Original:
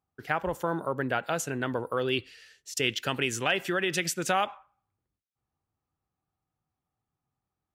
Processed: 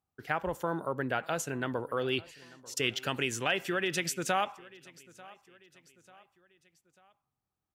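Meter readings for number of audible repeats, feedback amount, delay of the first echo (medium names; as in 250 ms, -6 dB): 2, 46%, 892 ms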